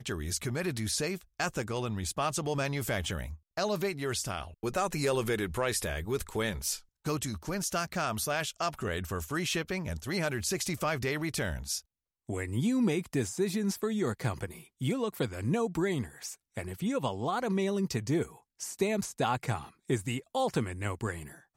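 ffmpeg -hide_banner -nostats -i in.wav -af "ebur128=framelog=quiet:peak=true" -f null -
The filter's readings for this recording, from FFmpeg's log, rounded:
Integrated loudness:
  I:         -32.6 LUFS
  Threshold: -42.6 LUFS
Loudness range:
  LRA:         1.2 LU
  Threshold: -52.6 LUFS
  LRA low:   -33.1 LUFS
  LRA high:  -31.9 LUFS
True peak:
  Peak:      -16.0 dBFS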